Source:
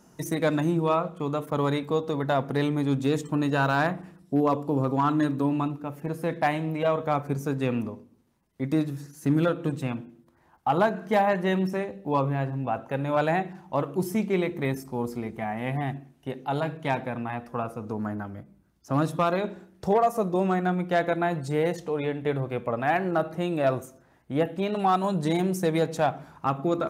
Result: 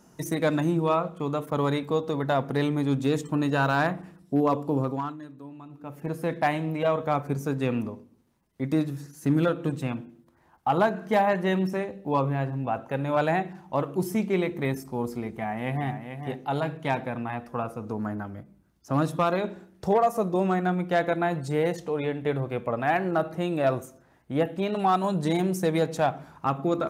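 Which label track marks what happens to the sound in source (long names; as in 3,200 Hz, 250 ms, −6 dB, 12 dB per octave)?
4.760000	6.080000	duck −18 dB, fades 0.41 s
15.310000	15.920000	delay throw 440 ms, feedback 10%, level −8.5 dB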